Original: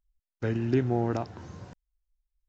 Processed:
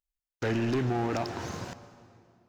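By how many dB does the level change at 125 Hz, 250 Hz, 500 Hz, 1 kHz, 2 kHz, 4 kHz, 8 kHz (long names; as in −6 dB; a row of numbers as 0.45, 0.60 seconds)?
−2.5 dB, −1.0 dB, −1.0 dB, +2.5 dB, +5.0 dB, +9.0 dB, can't be measured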